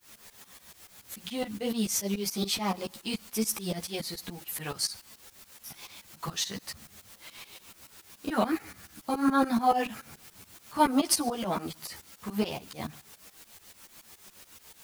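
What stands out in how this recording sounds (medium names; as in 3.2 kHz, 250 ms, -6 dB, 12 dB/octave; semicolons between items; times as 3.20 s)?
a quantiser's noise floor 8-bit, dither triangular; tremolo saw up 7 Hz, depth 95%; a shimmering, thickened sound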